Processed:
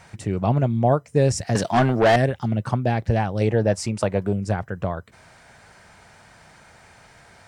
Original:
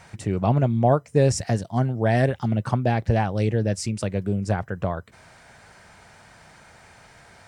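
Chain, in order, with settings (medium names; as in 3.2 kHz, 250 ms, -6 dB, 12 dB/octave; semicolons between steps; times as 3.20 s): 1.55–2.16 s: overdrive pedal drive 25 dB, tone 3.8 kHz, clips at -8 dBFS; 3.41–4.33 s: peaking EQ 870 Hz +12 dB 1.6 oct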